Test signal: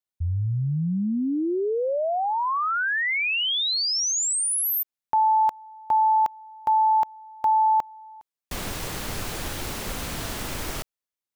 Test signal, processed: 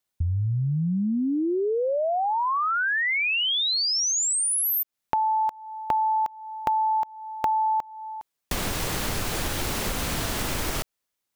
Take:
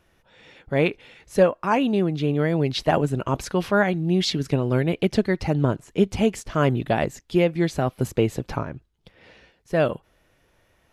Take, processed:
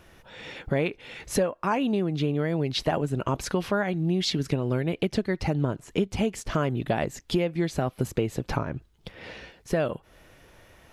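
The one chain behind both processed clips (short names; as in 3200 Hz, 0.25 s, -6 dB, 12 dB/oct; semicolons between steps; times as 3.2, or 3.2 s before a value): compressor 4:1, threshold -34 dBFS; gain +9 dB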